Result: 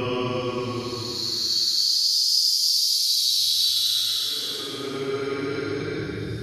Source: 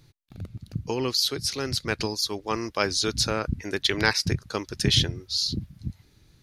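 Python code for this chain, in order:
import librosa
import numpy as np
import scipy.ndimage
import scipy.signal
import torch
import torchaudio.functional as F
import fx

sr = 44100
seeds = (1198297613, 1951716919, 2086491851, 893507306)

y = fx.paulstretch(x, sr, seeds[0], factor=20.0, window_s=0.1, from_s=1.07)
y = fx.rev_fdn(y, sr, rt60_s=1.4, lf_ratio=1.1, hf_ratio=0.9, size_ms=29.0, drr_db=2.5)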